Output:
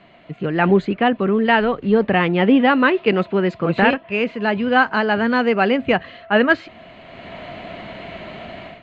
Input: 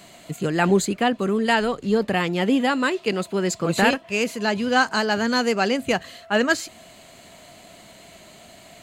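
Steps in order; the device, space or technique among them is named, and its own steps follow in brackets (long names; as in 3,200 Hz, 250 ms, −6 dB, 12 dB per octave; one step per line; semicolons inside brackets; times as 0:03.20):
action camera in a waterproof case (low-pass filter 2,900 Hz 24 dB per octave; automatic gain control gain up to 15 dB; level −1 dB; AAC 128 kbit/s 48,000 Hz)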